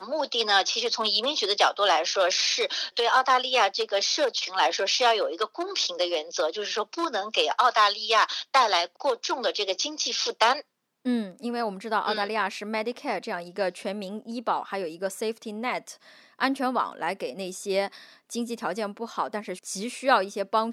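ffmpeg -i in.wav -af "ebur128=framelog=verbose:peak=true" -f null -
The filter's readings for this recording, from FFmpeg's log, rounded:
Integrated loudness:
  I:         -25.7 LUFS
  Threshold: -35.8 LUFS
Loudness range:
  LRA:         7.9 LU
  Threshold: -45.9 LUFS
  LRA low:   -30.8 LUFS
  LRA high:  -23.0 LUFS
True peak:
  Peak:       -7.6 dBFS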